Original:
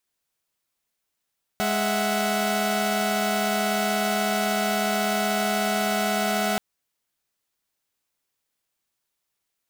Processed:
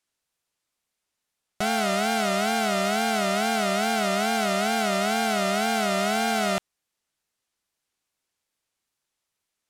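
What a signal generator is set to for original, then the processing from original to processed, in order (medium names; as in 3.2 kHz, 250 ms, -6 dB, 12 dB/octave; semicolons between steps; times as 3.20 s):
chord G#3/E5/F#5 saw, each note -24 dBFS 4.98 s
low-pass 11 kHz 12 dB/octave; wow and flutter 130 cents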